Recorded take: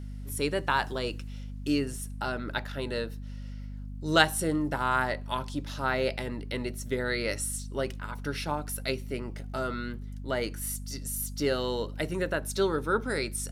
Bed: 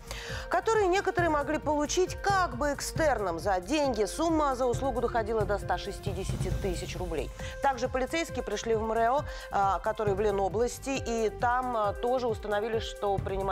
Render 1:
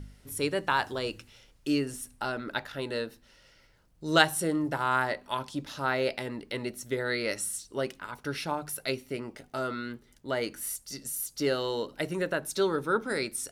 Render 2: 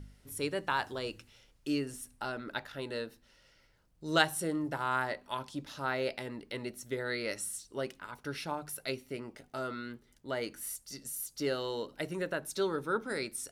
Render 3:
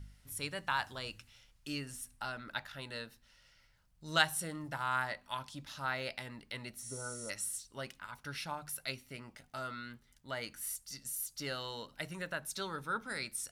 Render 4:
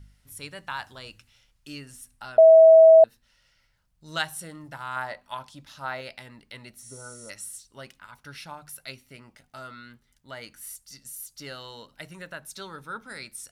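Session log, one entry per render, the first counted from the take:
hum removal 50 Hz, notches 5
level −5 dB
0:06.83–0:07.27: healed spectral selection 1,500–11,000 Hz before; parametric band 380 Hz −14 dB 1.3 octaves
0:02.38–0:03.04: beep over 647 Hz −8.5 dBFS; 0:04.96–0:06.01: dynamic equaliser 690 Hz, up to +7 dB, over −50 dBFS, Q 0.85

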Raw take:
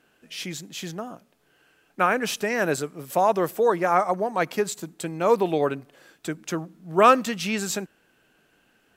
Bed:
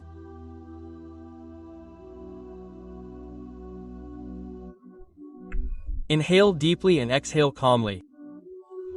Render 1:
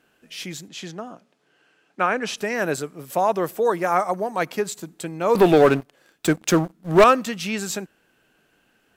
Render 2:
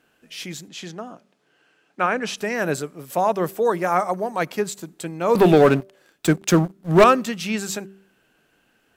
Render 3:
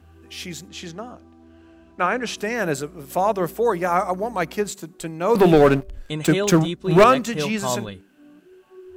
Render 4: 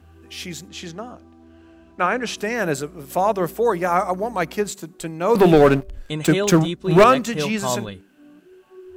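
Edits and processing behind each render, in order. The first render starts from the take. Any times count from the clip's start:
0:00.68–0:02.38: band-pass filter 150–7,200 Hz; 0:03.65–0:04.46: high-shelf EQ 6,200 Hz +7 dB; 0:05.35–0:07.04: leveller curve on the samples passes 3
hum removal 194.3 Hz, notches 3; dynamic equaliser 170 Hz, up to +5 dB, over −32 dBFS, Q 1.3
mix in bed −5.5 dB
level +1 dB; brickwall limiter −3 dBFS, peak gain reduction 1 dB

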